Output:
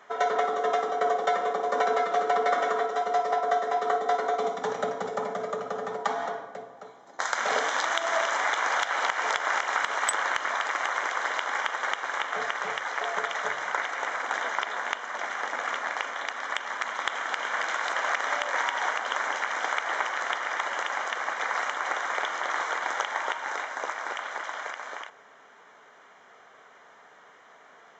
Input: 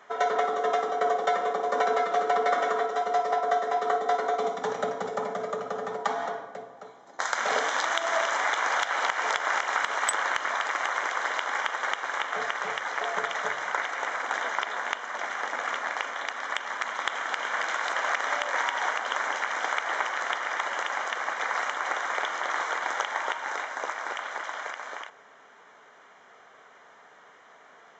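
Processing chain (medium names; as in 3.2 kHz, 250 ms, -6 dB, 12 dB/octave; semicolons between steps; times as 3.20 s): 12.82–13.47 s: bass shelf 140 Hz -9.5 dB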